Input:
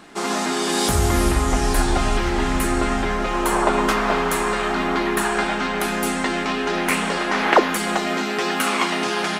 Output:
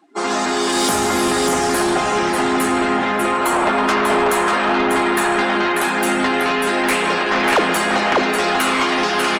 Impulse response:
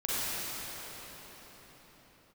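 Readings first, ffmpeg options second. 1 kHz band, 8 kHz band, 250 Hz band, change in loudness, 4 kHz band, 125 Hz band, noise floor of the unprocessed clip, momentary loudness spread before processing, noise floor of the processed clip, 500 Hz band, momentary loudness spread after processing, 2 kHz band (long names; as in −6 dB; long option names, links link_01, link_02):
+4.5 dB, +3.0 dB, +3.0 dB, +4.0 dB, +4.0 dB, −6.0 dB, −24 dBFS, 4 LU, −20 dBFS, +4.0 dB, 2 LU, +4.5 dB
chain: -filter_complex "[0:a]highpass=250,aecho=1:1:593:0.631,asplit=2[link_01][link_02];[1:a]atrim=start_sample=2205[link_03];[link_02][link_03]afir=irnorm=-1:irlink=0,volume=-18.5dB[link_04];[link_01][link_04]amix=inputs=2:normalize=0,afftdn=noise_reduction=25:noise_floor=-34,asoftclip=type=tanh:threshold=-15.5dB,areverse,acompressor=mode=upward:threshold=-29dB:ratio=2.5,areverse,volume=4.5dB"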